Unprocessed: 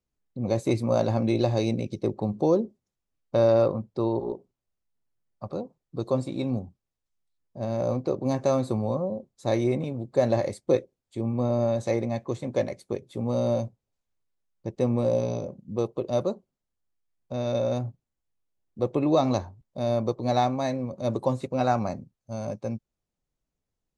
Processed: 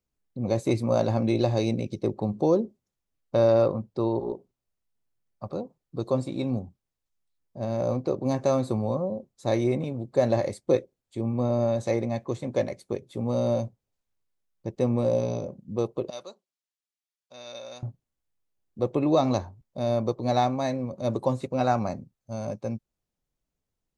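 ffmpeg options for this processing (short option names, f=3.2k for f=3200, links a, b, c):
-filter_complex "[0:a]asettb=1/sr,asplit=3[a][b][c];[a]atrim=end=16.104[d];[b]atrim=start=16.1:end=17.83,asetpts=PTS-STARTPTS,afade=t=in:d=0.004:c=qsin,afade=t=out:st=1.726:d=0.004:c=qsin,bandpass=f=4.8k:t=q:w=0.63[e];[c]atrim=start=17.826[f];[d][e]acrossfade=d=0.004:c1=hsin:c2=qsin[g];[g][f]acrossfade=d=0.004:c1=qsin:c2=hsin"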